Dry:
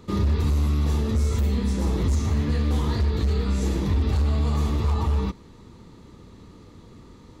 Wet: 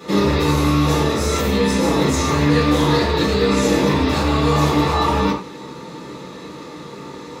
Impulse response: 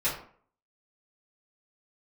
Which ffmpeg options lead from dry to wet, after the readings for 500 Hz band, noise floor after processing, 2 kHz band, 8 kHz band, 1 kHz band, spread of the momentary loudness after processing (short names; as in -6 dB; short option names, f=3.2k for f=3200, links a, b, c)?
+14.5 dB, -35 dBFS, +16.5 dB, n/a, +16.0 dB, 18 LU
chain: -filter_complex "[0:a]highpass=270,asplit=2[a][b];[b]alimiter=level_in=6.5dB:limit=-24dB:level=0:latency=1,volume=-6.5dB,volume=2dB[c];[a][c]amix=inputs=2:normalize=0[d];[1:a]atrim=start_sample=2205,afade=t=out:st=0.17:d=0.01,atrim=end_sample=7938[e];[d][e]afir=irnorm=-1:irlink=0,volume=3dB"